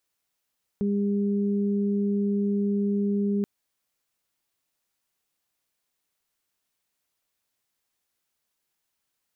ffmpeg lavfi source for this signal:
-f lavfi -i "aevalsrc='0.075*sin(2*PI*202*t)+0.0335*sin(2*PI*404*t)':d=2.63:s=44100"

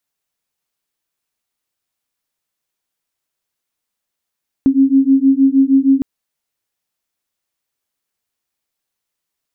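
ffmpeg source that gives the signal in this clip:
-f lavfi -i "aevalsrc='0.266*(sin(2*PI*267*t)+sin(2*PI*273.4*t))':d=1.36:s=44100"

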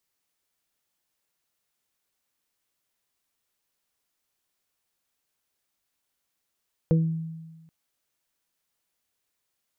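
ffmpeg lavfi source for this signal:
-f lavfi -i "aevalsrc='0.158*pow(10,-3*t/1.31)*sin(2*PI*162*t)+0.0501*pow(10,-3*t/0.45)*sin(2*PI*324*t)+0.0841*pow(10,-3*t/0.22)*sin(2*PI*486*t)':d=0.78:s=44100"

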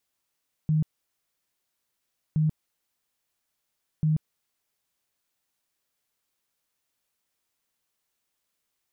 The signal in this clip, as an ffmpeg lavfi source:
-f lavfi -i "aevalsrc='0.106*sin(2*PI*155*mod(t,1.67))*lt(mod(t,1.67),21/155)':d=5.01:s=44100"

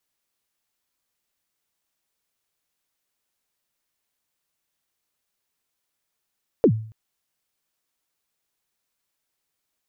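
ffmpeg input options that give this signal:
-f lavfi -i "aevalsrc='0.355*pow(10,-3*t/0.49)*sin(2*PI*(530*0.075/log(110/530)*(exp(log(110/530)*min(t,0.075)/0.075)-1)+110*max(t-0.075,0)))':d=0.28:s=44100"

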